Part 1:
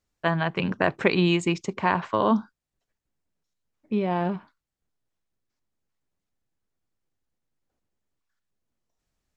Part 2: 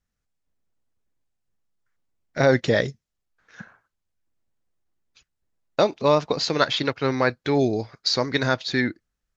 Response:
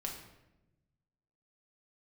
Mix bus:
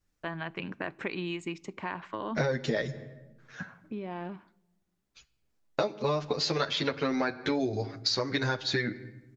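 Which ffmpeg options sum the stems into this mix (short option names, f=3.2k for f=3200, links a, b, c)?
-filter_complex "[0:a]equalizer=f=310:w=3.8:g=7,acompressor=threshold=-40dB:ratio=2,adynamicequalizer=threshold=0.00447:dfrequency=2100:dqfactor=0.86:tfrequency=2100:tqfactor=0.86:attack=5:release=100:ratio=0.375:range=3:mode=boostabove:tftype=bell,volume=-4dB,asplit=2[a][b];[b]volume=-20dB[c];[1:a]asplit=2[d][e];[e]adelay=8.7,afreqshift=0.28[f];[d][f]amix=inputs=2:normalize=1,volume=2.5dB,asplit=2[g][h];[h]volume=-12dB[i];[2:a]atrim=start_sample=2205[j];[c][i]amix=inputs=2:normalize=0[k];[k][j]afir=irnorm=-1:irlink=0[l];[a][g][l]amix=inputs=3:normalize=0,acompressor=threshold=-25dB:ratio=12"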